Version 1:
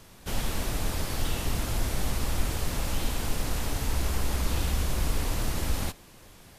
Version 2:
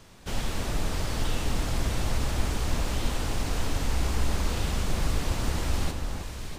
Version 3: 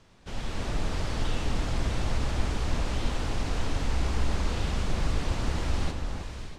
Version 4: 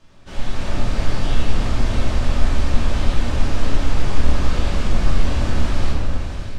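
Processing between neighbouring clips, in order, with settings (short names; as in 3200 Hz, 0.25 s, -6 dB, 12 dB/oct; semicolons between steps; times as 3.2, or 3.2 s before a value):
bell 12000 Hz -12 dB 0.43 oct; echo with dull and thin repeats by turns 0.324 s, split 1700 Hz, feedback 73%, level -5 dB
AGC gain up to 5.5 dB; air absorption 62 m; gain -6 dB
shoebox room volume 340 m³, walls mixed, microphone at 2.6 m; gain -1 dB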